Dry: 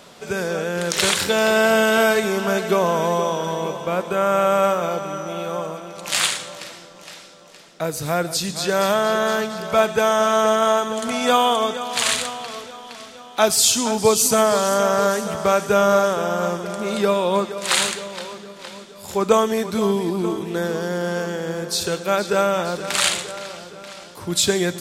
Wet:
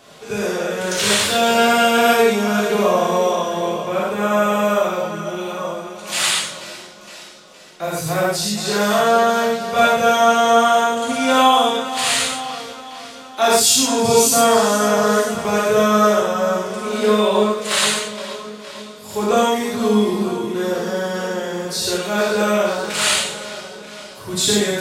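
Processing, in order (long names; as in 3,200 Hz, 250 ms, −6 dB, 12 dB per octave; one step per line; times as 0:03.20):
phase-vocoder pitch shift with formants kept +1 semitone
reverb whose tail is shaped and stops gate 160 ms flat, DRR −7 dB
level −5 dB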